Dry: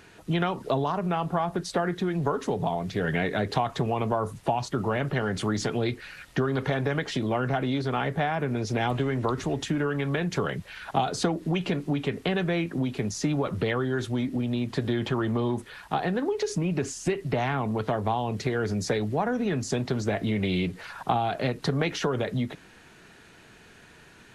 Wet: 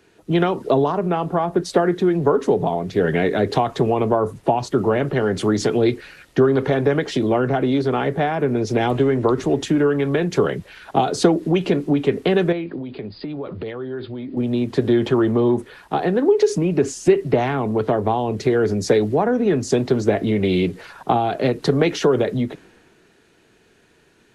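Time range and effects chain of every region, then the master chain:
12.52–14.37 s: Chebyshev low-pass 4.9 kHz, order 10 + compression, threshold -31 dBFS
whole clip: peaking EQ 380 Hz +9 dB 1.4 oct; three bands expanded up and down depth 40%; trim +3.5 dB

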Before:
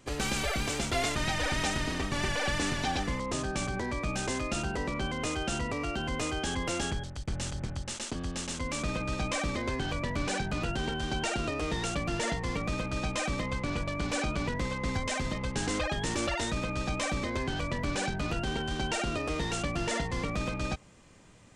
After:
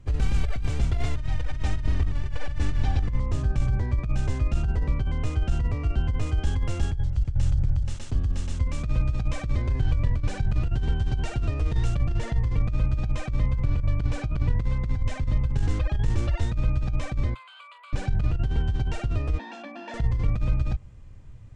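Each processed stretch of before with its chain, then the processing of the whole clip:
6.26–11.98 s: treble shelf 5.2 kHz +4 dB + delay 451 ms -22.5 dB
17.34–17.93 s: steep high-pass 850 Hz + static phaser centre 1.2 kHz, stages 8
19.38–19.94 s: steep high-pass 220 Hz 96 dB/octave + distance through air 170 m + comb 1.2 ms, depth 79%
whole clip: RIAA curve playback; compressor with a negative ratio -20 dBFS, ratio -0.5; FFT filter 120 Hz 0 dB, 180 Hz -11 dB, 10 kHz -2 dB

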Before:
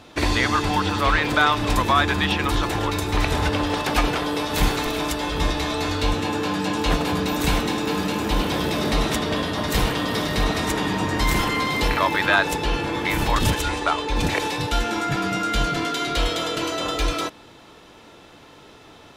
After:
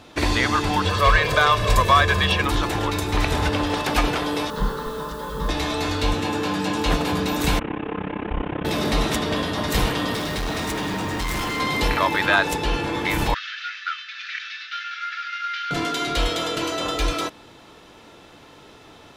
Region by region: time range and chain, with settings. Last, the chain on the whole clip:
0.85–2.42 s: comb 1.8 ms, depth 82% + overload inside the chain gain 8 dB
4.50–5.49 s: distance through air 250 m + static phaser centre 470 Hz, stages 8 + word length cut 8-bit, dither triangular
7.59–8.65 s: one-bit delta coder 16 kbps, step -32.5 dBFS + AM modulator 33 Hz, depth 85%
10.14–11.60 s: short-mantissa float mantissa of 2-bit + overload inside the chain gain 23 dB
13.34–15.71 s: CVSD coder 32 kbps + steep high-pass 1.3 kHz 96 dB/octave + distance through air 160 m
whole clip: none

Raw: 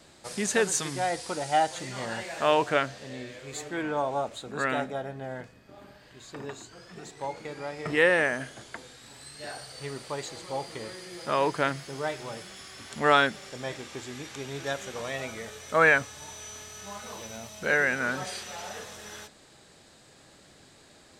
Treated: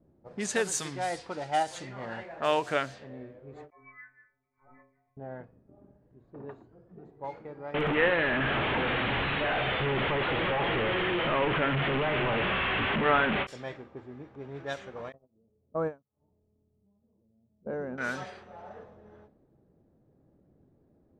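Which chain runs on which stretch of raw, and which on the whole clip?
3.70–5.17 s: frequency inversion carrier 2.6 kHz + inharmonic resonator 130 Hz, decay 0.68 s, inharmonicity 0.008
7.74–13.47 s: one-bit delta coder 16 kbps, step -18 dBFS + feedback delay 66 ms, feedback 60%, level -16.5 dB
15.12–17.98 s: gate -32 dBFS, range -38 dB + FFT filter 140 Hz 0 dB, 210 Hz +4 dB, 1.1 kHz -8 dB, 1.9 kHz -28 dB + upward compressor, threshold -46 dBFS
whole clip: level-controlled noise filter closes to 320 Hz, open at -24 dBFS; endings held to a fixed fall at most 310 dB/s; trim -3.5 dB

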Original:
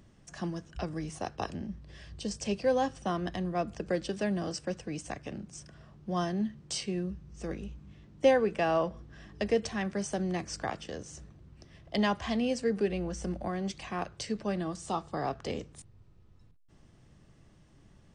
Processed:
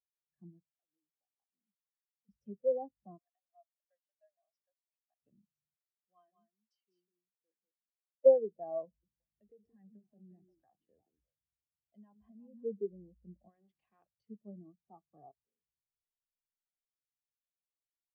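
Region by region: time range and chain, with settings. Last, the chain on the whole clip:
0.71–2.29 s: frequency weighting A + compression 4:1, threshold -46 dBFS
3.18–5.22 s: elliptic high-pass 610 Hz + compression 1.5:1, threshold -48 dBFS
5.76–8.26 s: high-pass 1.4 kHz 6 dB/octave + delay 196 ms -3.5 dB
8.85–12.64 s: compression 20:1, threshold -32 dBFS + repeats whose band climbs or falls 175 ms, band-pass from 290 Hz, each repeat 1.4 oct, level -1.5 dB
13.49–14.06 s: bass shelf 110 Hz -6 dB + hum notches 60/120/180/240/300/360 Hz + spectrum-flattening compressor 2:1
15.31–15.77 s: compression 8:1, threshold -45 dBFS + doubling 17 ms -7.5 dB
whole clip: low-pass that closes with the level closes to 1.2 kHz, closed at -28 dBFS; spectral contrast expander 2.5:1

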